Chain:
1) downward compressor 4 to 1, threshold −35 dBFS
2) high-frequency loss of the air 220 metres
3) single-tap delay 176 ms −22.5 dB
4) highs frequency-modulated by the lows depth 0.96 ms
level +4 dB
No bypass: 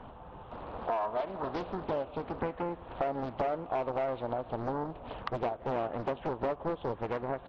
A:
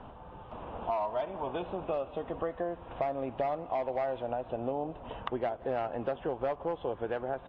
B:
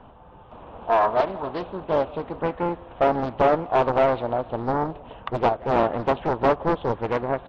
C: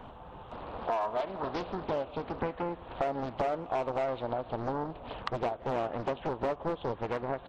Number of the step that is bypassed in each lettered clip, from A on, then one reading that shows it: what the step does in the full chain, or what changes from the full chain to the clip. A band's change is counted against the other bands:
4, 125 Hz band −3.0 dB
1, average gain reduction 7.5 dB
2, 4 kHz band +3.5 dB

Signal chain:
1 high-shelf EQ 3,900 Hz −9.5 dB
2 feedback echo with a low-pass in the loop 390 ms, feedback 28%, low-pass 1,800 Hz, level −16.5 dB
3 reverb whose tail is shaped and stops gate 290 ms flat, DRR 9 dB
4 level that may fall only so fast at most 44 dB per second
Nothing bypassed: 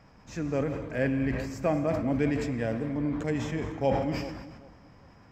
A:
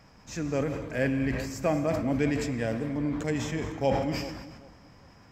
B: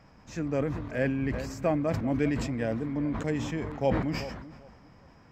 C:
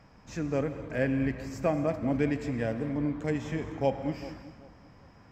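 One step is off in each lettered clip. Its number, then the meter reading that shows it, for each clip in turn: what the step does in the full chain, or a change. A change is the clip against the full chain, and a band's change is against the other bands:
1, 4 kHz band +4.5 dB
3, 4 kHz band +1.5 dB
4, change in momentary loudness spread +2 LU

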